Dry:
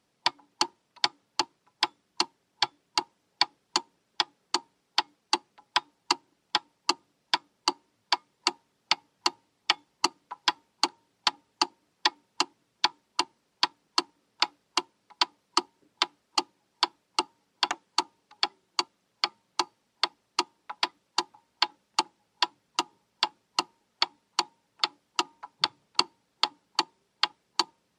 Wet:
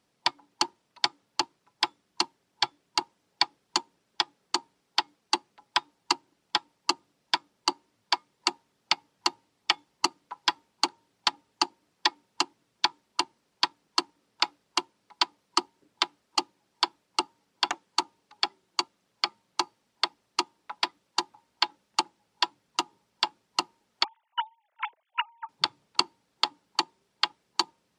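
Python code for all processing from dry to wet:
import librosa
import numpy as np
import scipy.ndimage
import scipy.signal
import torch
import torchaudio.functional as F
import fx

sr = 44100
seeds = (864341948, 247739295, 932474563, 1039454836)

y = fx.chain(x, sr, fx.sine_speech(),
    fx.dynamic_eq(hz=750.0, q=0.97, threshold_db=-36.0, ratio=4.0, max_db=-4), at=(24.04, 25.49))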